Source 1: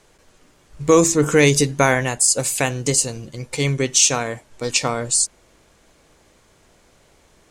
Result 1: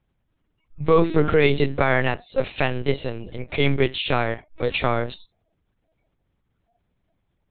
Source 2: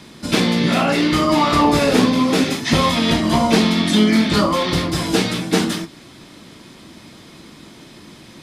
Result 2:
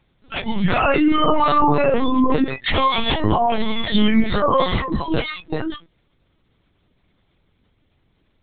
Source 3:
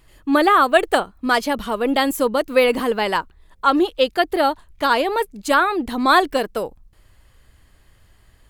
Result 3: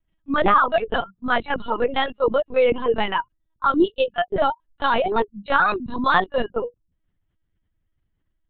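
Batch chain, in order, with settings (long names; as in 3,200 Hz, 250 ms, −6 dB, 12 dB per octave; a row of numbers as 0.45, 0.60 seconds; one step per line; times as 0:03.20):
dynamic equaliser 110 Hz, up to −5 dB, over −42 dBFS, Q 3.2
mains hum 50 Hz, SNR 25 dB
brickwall limiter −9.5 dBFS
noise reduction from a noise print of the clip's start 28 dB
linear-prediction vocoder at 8 kHz pitch kept
normalise the peak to −3 dBFS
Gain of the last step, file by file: +2.5, +4.5, +1.0 decibels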